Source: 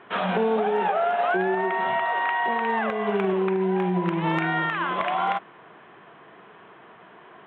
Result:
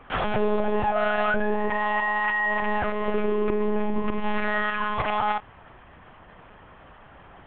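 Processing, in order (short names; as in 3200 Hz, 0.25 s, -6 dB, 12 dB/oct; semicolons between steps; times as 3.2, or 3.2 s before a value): monotone LPC vocoder at 8 kHz 210 Hz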